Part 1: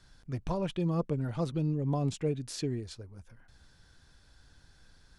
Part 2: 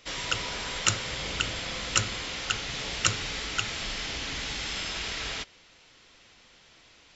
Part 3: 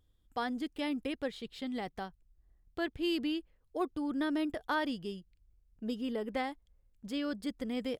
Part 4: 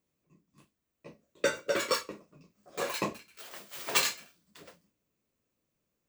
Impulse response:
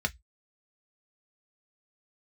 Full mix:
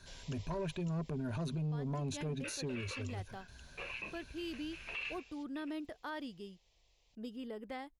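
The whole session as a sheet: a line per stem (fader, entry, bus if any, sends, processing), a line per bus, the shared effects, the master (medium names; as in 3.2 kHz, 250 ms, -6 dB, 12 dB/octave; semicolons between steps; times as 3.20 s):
+2.5 dB, 0.00 s, no send, rippled EQ curve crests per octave 1.5, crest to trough 11 dB; saturation -24.5 dBFS, distortion -16 dB
-16.0 dB, 0.00 s, no send, static phaser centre 600 Hz, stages 4; auto duck -15 dB, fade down 1.45 s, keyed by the first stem
-8.5 dB, 1.35 s, no send, none
-16.0 dB, 1.00 s, no send, resonant low-pass 2.6 kHz, resonance Q 13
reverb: none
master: peak limiter -32.5 dBFS, peak gain reduction 14.5 dB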